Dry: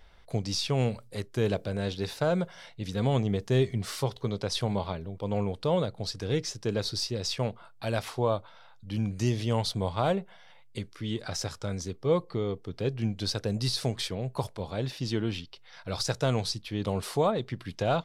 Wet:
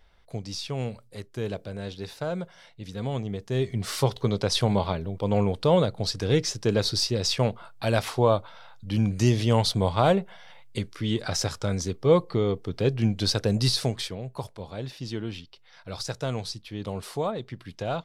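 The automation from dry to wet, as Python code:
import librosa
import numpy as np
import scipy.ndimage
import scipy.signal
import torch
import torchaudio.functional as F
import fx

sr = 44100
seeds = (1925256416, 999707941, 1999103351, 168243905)

y = fx.gain(x, sr, db=fx.line((3.47, -4.0), (3.99, 6.0), (13.68, 6.0), (14.25, -3.0)))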